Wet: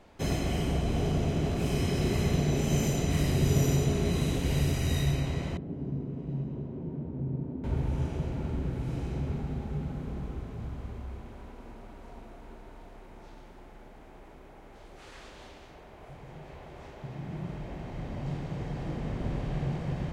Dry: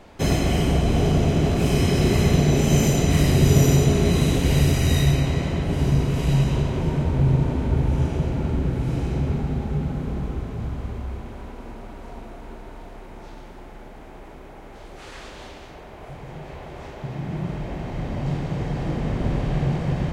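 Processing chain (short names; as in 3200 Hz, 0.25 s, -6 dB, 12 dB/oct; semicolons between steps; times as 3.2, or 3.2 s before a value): 5.57–7.64 band-pass 250 Hz, Q 1.3; gain -9 dB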